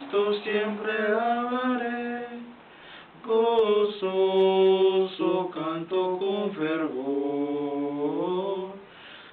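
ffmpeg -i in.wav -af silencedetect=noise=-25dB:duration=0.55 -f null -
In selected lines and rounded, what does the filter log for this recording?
silence_start: 2.18
silence_end: 3.30 | silence_duration: 1.11
silence_start: 8.64
silence_end: 9.32 | silence_duration: 0.69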